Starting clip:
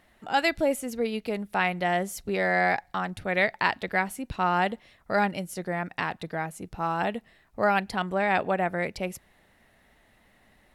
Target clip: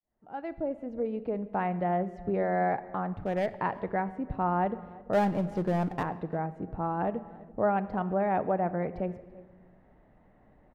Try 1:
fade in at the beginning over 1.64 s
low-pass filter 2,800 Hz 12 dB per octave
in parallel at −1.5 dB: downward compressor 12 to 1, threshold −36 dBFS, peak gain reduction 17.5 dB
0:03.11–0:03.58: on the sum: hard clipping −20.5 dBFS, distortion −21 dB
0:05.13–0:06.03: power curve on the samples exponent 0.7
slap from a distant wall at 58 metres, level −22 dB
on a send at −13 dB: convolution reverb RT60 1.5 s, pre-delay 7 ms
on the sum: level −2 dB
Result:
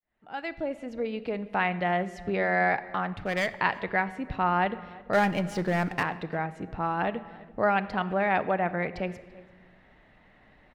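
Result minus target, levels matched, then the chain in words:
2,000 Hz band +9.0 dB
fade in at the beginning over 1.64 s
low-pass filter 850 Hz 12 dB per octave
in parallel at −1.5 dB: downward compressor 12 to 1, threshold −36 dBFS, peak gain reduction 15.5 dB
0:03.11–0:03.58: on the sum: hard clipping −20.5 dBFS, distortion −28 dB
0:05.13–0:06.03: power curve on the samples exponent 0.7
slap from a distant wall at 58 metres, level −22 dB
on a send at −13 dB: convolution reverb RT60 1.5 s, pre-delay 7 ms
on the sum: level −2 dB

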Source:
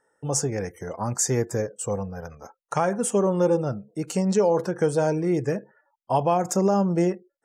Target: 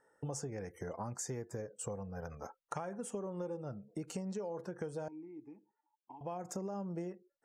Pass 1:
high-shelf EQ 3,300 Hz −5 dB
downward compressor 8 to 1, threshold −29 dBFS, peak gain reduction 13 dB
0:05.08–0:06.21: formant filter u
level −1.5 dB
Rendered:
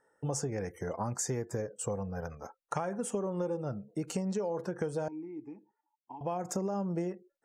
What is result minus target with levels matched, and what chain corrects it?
downward compressor: peak gain reduction −7 dB
high-shelf EQ 3,300 Hz −5 dB
downward compressor 8 to 1, threshold −37 dBFS, peak gain reduction 20 dB
0:05.08–0:06.21: formant filter u
level −1.5 dB

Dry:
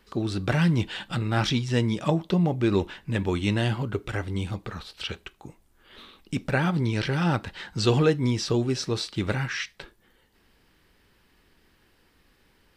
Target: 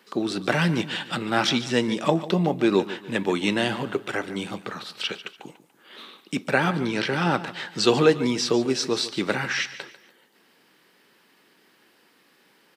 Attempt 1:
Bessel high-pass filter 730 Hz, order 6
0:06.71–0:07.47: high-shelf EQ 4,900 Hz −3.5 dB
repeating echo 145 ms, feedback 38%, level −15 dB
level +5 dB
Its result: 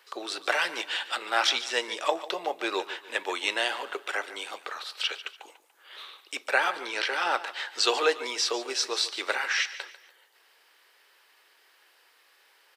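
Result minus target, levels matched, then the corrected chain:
250 Hz band −14.5 dB
Bessel high-pass filter 250 Hz, order 6
0:06.71–0:07.47: high-shelf EQ 4,900 Hz −3.5 dB
repeating echo 145 ms, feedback 38%, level −15 dB
level +5 dB

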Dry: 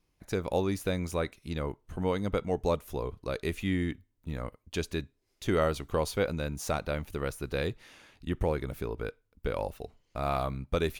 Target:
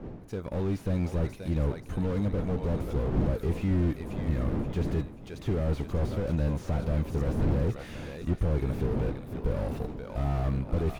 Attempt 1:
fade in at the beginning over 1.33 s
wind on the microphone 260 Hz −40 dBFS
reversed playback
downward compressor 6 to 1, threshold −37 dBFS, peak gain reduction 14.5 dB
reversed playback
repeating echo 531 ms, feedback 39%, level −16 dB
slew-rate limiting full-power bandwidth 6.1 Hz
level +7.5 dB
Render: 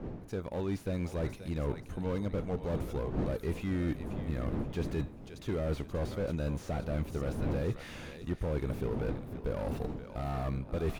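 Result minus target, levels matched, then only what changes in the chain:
downward compressor: peak gain reduction +8 dB
change: downward compressor 6 to 1, threshold −27.5 dBFS, peak gain reduction 6.5 dB

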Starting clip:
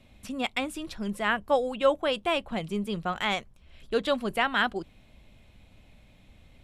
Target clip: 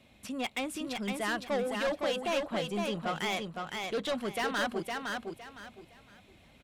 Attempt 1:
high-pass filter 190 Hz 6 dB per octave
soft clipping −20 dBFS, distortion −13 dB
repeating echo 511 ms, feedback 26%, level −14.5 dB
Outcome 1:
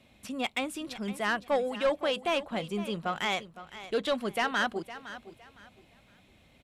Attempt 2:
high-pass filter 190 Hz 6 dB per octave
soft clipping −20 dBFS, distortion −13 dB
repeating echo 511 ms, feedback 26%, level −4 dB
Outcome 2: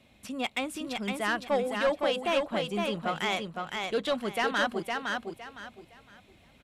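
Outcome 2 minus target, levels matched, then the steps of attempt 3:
soft clipping: distortion −6 dB
high-pass filter 190 Hz 6 dB per octave
soft clipping −27.5 dBFS, distortion −7 dB
repeating echo 511 ms, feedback 26%, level −4 dB

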